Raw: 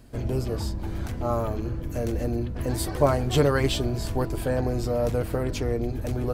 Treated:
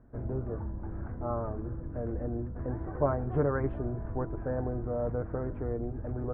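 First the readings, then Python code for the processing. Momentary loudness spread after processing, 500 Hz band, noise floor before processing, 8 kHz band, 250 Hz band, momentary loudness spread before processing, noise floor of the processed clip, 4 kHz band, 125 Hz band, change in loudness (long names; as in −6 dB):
8 LU, −7.0 dB, −33 dBFS, below −40 dB, −7.0 dB, 8 LU, −40 dBFS, below −40 dB, −7.0 dB, −7.5 dB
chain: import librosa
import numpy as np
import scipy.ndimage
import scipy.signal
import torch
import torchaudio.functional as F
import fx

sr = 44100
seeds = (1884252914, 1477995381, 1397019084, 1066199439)

y = scipy.signal.sosfilt(scipy.signal.butter(6, 1600.0, 'lowpass', fs=sr, output='sos'), x)
y = y * librosa.db_to_amplitude(-7.0)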